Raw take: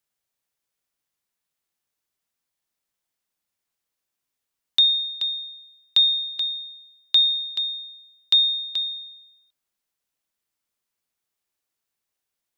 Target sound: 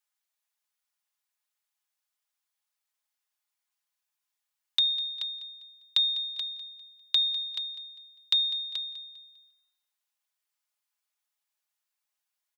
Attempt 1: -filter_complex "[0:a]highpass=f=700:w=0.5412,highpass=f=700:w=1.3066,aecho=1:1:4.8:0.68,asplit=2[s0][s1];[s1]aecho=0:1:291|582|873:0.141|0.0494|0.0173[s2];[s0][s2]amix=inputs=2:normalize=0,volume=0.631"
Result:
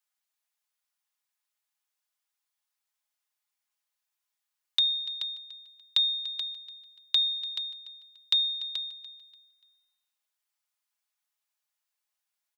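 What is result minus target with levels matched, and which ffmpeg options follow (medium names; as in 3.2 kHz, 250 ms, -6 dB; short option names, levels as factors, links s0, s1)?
echo 91 ms late
-filter_complex "[0:a]highpass=f=700:w=0.5412,highpass=f=700:w=1.3066,aecho=1:1:4.8:0.68,asplit=2[s0][s1];[s1]aecho=0:1:200|400|600:0.141|0.0494|0.0173[s2];[s0][s2]amix=inputs=2:normalize=0,volume=0.631"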